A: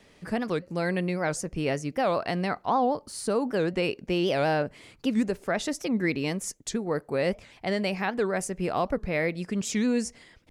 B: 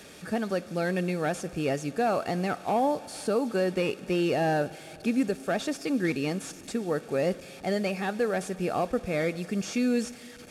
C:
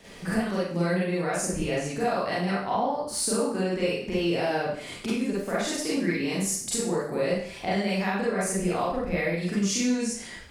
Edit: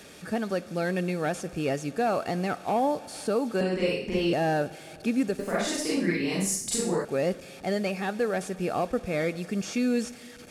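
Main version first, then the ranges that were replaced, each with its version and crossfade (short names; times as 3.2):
B
3.61–4.33 from C
5.39–7.05 from C
not used: A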